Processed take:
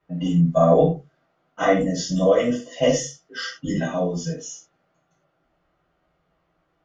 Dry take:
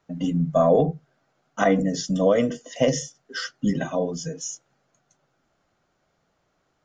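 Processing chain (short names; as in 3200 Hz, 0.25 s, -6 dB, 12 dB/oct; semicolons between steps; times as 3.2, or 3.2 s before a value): low-pass opened by the level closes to 2900 Hz, open at -18.5 dBFS; non-linear reverb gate 0.13 s falling, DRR -8 dB; gain -7 dB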